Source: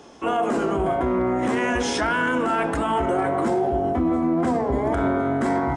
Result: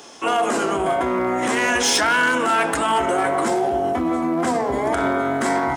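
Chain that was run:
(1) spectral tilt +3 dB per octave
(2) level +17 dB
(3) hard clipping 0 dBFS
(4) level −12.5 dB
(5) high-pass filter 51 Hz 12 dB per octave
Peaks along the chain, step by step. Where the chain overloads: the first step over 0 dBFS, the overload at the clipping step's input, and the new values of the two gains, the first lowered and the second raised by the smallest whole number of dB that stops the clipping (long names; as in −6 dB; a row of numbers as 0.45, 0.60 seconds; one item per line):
−11.0, +6.0, 0.0, −12.5, −11.5 dBFS
step 2, 6.0 dB
step 2 +11 dB, step 4 −6.5 dB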